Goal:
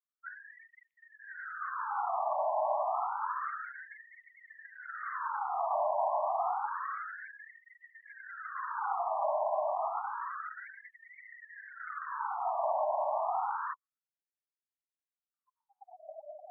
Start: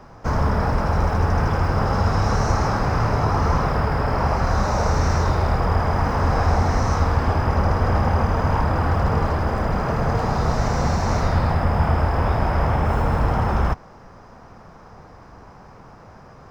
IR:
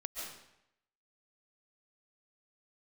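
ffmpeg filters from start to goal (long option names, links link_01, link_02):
-filter_complex "[0:a]highpass=frequency=570:width_type=q:width=4.9,afftfilt=real='re*gte(hypot(re,im),0.0562)':imag='im*gte(hypot(re,im),0.0562)':win_size=1024:overlap=0.75,acrossover=split=2800[link_01][link_02];[link_01]alimiter=limit=-21dB:level=0:latency=1:release=198[link_03];[link_03][link_02]amix=inputs=2:normalize=0,afftfilt=real='re*between(b*sr/1024,790*pow(2600/790,0.5+0.5*sin(2*PI*0.29*pts/sr))/1.41,790*pow(2600/790,0.5+0.5*sin(2*PI*0.29*pts/sr))*1.41)':imag='im*between(b*sr/1024,790*pow(2600/790,0.5+0.5*sin(2*PI*0.29*pts/sr))/1.41,790*pow(2600/790,0.5+0.5*sin(2*PI*0.29*pts/sr))*1.41)':win_size=1024:overlap=0.75"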